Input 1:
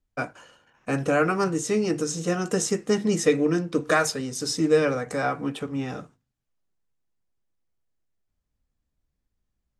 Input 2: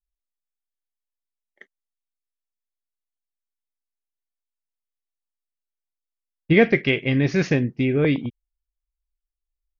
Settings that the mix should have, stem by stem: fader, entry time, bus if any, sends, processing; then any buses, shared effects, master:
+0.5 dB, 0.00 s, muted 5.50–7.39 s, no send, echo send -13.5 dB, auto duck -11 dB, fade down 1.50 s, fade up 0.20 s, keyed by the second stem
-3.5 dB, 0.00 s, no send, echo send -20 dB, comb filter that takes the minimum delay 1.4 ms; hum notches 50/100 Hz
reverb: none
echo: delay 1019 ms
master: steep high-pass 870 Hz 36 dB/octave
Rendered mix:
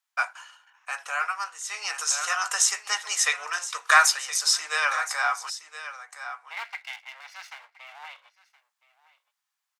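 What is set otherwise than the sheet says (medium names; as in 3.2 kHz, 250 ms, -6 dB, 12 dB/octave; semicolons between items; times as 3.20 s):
stem 1 +0.5 dB -> +7.5 dB; stem 2 -3.5 dB -> -11.0 dB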